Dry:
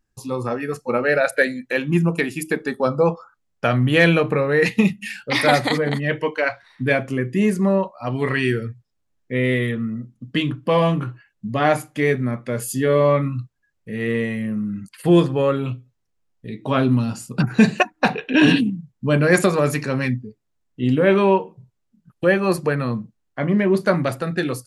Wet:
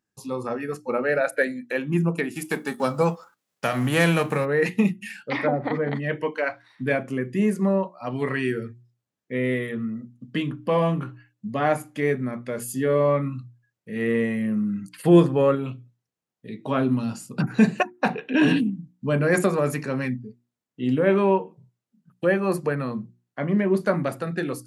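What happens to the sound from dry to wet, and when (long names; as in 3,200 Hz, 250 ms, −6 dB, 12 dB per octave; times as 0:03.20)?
0:02.34–0:04.44: spectral envelope flattened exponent 0.6
0:05.15–0:06.00: treble cut that deepens with the level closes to 570 Hz, closed at −11.5 dBFS
0:13.96–0:15.55: clip gain +3.5 dB
whole clip: Chebyshev high-pass filter 160 Hz, order 2; mains-hum notches 60/120/180/240/300/360 Hz; dynamic equaliser 4,100 Hz, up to −7 dB, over −39 dBFS, Q 0.91; level −3 dB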